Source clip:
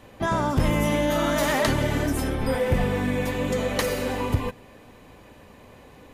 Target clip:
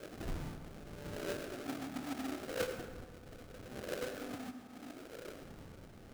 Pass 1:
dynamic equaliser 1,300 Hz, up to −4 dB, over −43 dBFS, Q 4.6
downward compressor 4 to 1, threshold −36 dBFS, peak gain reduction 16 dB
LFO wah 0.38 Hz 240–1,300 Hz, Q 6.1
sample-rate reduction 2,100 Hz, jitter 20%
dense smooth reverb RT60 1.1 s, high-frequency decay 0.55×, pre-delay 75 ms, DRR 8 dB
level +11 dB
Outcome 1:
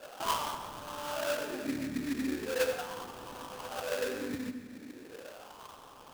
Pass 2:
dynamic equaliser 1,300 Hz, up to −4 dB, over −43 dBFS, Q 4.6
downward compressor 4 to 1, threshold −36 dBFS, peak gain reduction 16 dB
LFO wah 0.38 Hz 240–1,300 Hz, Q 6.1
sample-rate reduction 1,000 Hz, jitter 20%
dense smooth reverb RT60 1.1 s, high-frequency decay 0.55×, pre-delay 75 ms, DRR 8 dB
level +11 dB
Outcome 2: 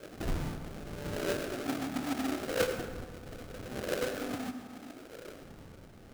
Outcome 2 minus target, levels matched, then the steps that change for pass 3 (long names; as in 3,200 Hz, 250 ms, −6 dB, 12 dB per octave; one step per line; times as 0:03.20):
downward compressor: peak gain reduction −7 dB
change: downward compressor 4 to 1, threshold −45.5 dBFS, peak gain reduction 23 dB